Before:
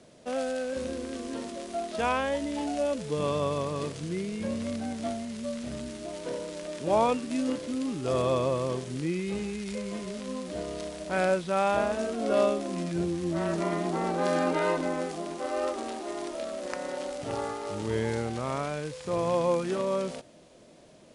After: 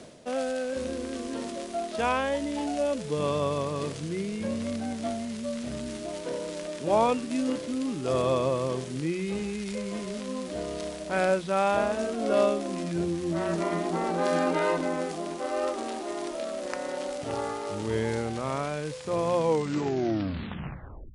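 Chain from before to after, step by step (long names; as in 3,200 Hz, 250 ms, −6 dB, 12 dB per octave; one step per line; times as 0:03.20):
turntable brake at the end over 1.77 s
mains-hum notches 60/120/180 Hz
reversed playback
upward compression, threshold −31 dBFS
reversed playback
level +1 dB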